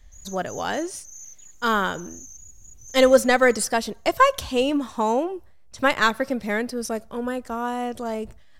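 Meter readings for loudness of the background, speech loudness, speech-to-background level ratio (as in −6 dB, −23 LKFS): −43.0 LKFS, −23.0 LKFS, 20.0 dB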